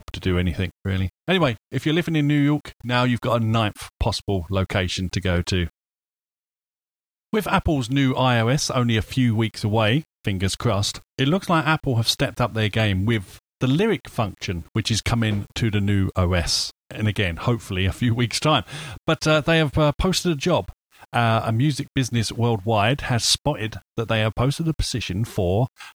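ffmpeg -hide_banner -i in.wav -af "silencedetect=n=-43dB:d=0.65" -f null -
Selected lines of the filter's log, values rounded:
silence_start: 5.68
silence_end: 7.33 | silence_duration: 1.65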